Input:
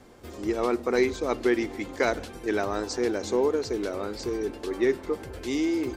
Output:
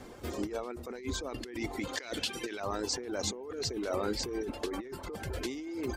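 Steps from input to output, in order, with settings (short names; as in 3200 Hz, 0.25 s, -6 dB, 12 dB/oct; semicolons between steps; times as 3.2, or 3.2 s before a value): reverb removal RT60 0.61 s; 1.87–2.6 weighting filter D; negative-ratio compressor -35 dBFS, ratio -1; gain -2 dB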